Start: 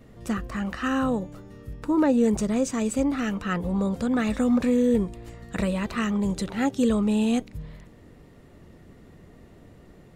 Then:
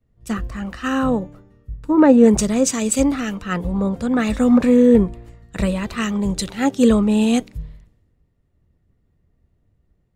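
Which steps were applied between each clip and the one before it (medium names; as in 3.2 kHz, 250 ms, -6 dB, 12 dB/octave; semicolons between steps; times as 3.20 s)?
three bands expanded up and down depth 100%; trim +6 dB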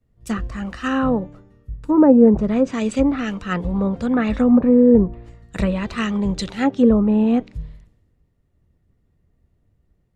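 low-pass that closes with the level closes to 890 Hz, closed at -11 dBFS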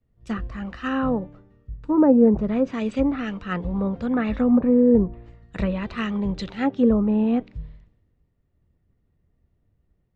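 low-pass 4 kHz 12 dB/octave; trim -4 dB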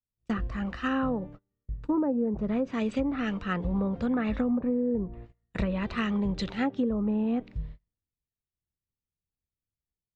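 gate -40 dBFS, range -28 dB; compression 12:1, threshold -24 dBFS, peak gain reduction 14 dB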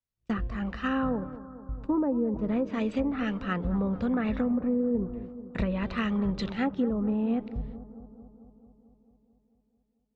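distance through air 57 m; bucket-brigade echo 221 ms, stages 2048, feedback 68%, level -15 dB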